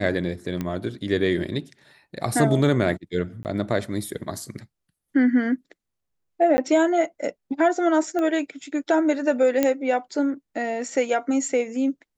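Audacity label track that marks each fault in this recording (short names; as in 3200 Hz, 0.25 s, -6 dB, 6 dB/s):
0.610000	0.610000	pop -15 dBFS
3.430000	3.450000	gap 19 ms
6.570000	6.580000	gap 10 ms
8.190000	8.190000	pop -16 dBFS
9.630000	9.630000	pop -7 dBFS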